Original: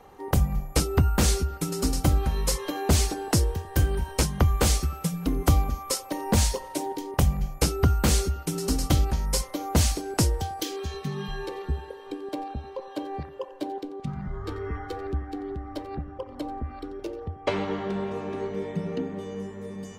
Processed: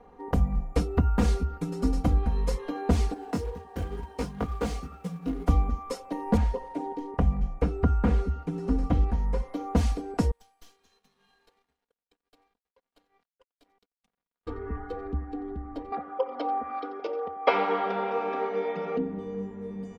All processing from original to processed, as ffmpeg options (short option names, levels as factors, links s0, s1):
-filter_complex "[0:a]asettb=1/sr,asplit=3[s0][s1][s2];[s0]atrim=end=3.144[s3];[s1]atrim=start=3.14:end=5.49,asetpts=PTS-STARTPTS,afade=t=in:d=0.004:c=qsin,afade=t=out:st=2.346:d=0.004:c=qsin,highpass=f=130:p=1,flanger=delay=15.5:depth=6.7:speed=2.1,acrusher=bits=3:mode=log:mix=0:aa=0.000001[s4];[s2]atrim=start=5.486[s5];[s3][s4]acrossfade=d=0.004:c1=hsin:c2=qsin[s6];[s6][s5]acrossfade=d=0.004:c1=qsin:c2=hsin,asettb=1/sr,asplit=3[s7][s8][s9];[s7]atrim=end=6.374[s10];[s8]atrim=start=6.37:end=9.52,asetpts=PTS-STARTPTS,afade=t=in:d=0.004:c=qsin,afade=t=out:st=3.146:d=0.004:c=qsin,acrossover=split=2600[s11][s12];[s12]acompressor=threshold=0.00631:ratio=4:attack=1:release=60[s13];[s11][s13]amix=inputs=2:normalize=0,lowpass=12000[s14];[s9]atrim=start=9.516[s15];[s10][s14]acrossfade=d=0.004:c1=hsin:c2=qsin[s16];[s16][s15]acrossfade=d=0.004:c1=qsin:c2=hsin,asettb=1/sr,asplit=3[s17][s18][s19];[s17]atrim=end=10.314[s20];[s18]atrim=start=10.31:end=14.47,asetpts=PTS-STARTPTS,afade=t=in:d=0.004:c=qsin,afade=t=out:st=4.156:d=0.004:c=qsin,aderivative,aeval=exprs='sgn(val(0))*max(abs(val(0))-0.00188,0)':c=same,aeval=exprs='(tanh(70.8*val(0)+0.55)-tanh(0.55))/70.8':c=same[s21];[s19]atrim=start=14.466[s22];[s20][s21]acrossfade=d=0.004:c1=hsin:c2=qsin[s23];[s23][s22]acrossfade=d=0.004:c1=qsin:c2=hsin,asettb=1/sr,asplit=3[s24][s25][s26];[s24]atrim=end=15.924[s27];[s25]atrim=start=15.92:end=18.97,asetpts=PTS-STARTPTS,afade=t=in:d=0.004:c=qsin,afade=t=out:st=3.046:d=0.004:c=qsin,acontrast=48,highpass=470,equalizer=f=540:t=q:w=4:g=5,equalizer=f=780:t=q:w=4:g=6,equalizer=f=1300:t=q:w=4:g=10,equalizer=f=2300:t=q:w=4:g=7,equalizer=f=3300:t=q:w=4:g=6,equalizer=f=5100:t=q:w=4:g=10,lowpass=f=5600:w=0.5412,lowpass=f=5600:w=1.3066[s28];[s26]atrim=start=18.966[s29];[s27][s28]acrossfade=d=0.004:c1=hsin:c2=qsin[s30];[s30][s29]acrossfade=d=0.004:c1=qsin:c2=hsin,lowpass=f=1000:p=1,aecho=1:1:4.2:0.68,volume=0.794"